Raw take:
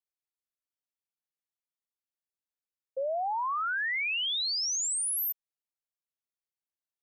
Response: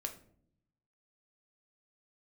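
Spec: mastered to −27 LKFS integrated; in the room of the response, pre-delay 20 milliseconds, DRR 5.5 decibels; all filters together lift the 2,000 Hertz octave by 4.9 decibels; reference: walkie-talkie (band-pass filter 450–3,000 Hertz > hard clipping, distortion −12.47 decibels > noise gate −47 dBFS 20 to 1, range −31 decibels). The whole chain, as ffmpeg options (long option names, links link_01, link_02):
-filter_complex "[0:a]equalizer=frequency=2000:width_type=o:gain=7,asplit=2[link_01][link_02];[1:a]atrim=start_sample=2205,adelay=20[link_03];[link_02][link_03]afir=irnorm=-1:irlink=0,volume=-4.5dB[link_04];[link_01][link_04]amix=inputs=2:normalize=0,highpass=450,lowpass=3000,asoftclip=type=hard:threshold=-25dB,agate=range=-31dB:threshold=-47dB:ratio=20,volume=1dB"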